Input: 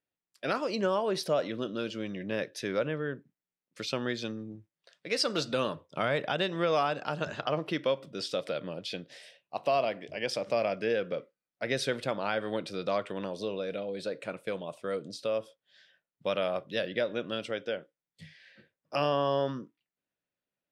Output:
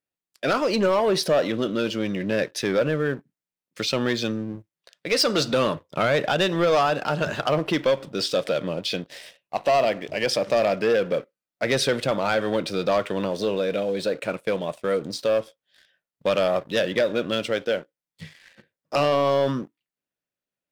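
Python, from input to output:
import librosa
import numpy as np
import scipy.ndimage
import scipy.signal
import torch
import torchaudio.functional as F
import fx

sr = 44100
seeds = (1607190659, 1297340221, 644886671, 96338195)

y = fx.leveller(x, sr, passes=2)
y = y * librosa.db_to_amplitude(3.0)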